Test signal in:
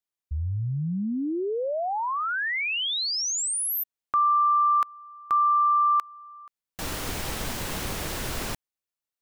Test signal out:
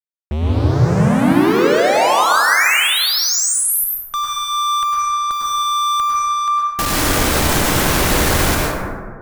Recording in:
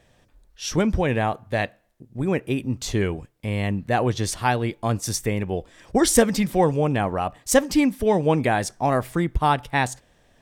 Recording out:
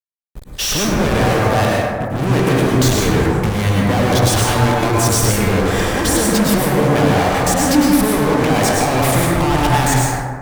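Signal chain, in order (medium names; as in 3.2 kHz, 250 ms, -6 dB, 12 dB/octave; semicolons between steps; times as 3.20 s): compressor with a negative ratio -28 dBFS, ratio -1; expander -42 dBFS; fuzz box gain 45 dB, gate -50 dBFS; plate-style reverb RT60 1.9 s, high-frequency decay 0.3×, pre-delay 90 ms, DRR -4 dB; trim -5.5 dB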